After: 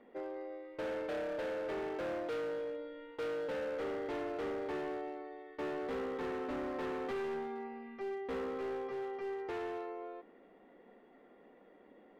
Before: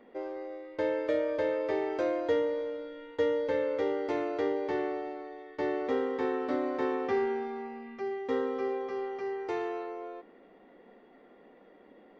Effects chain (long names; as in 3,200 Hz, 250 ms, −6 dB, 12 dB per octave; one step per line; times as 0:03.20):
low-pass filter 4,000 Hz
hard clipping −31.5 dBFS, distortion −8 dB
level −4 dB